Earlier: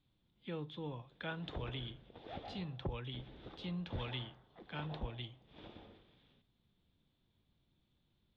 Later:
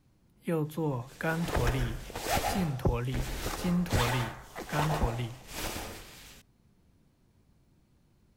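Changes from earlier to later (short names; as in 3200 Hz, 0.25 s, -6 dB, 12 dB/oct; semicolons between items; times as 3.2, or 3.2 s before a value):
background: remove band-pass 230 Hz, Q 0.56; master: remove ladder low-pass 3700 Hz, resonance 80%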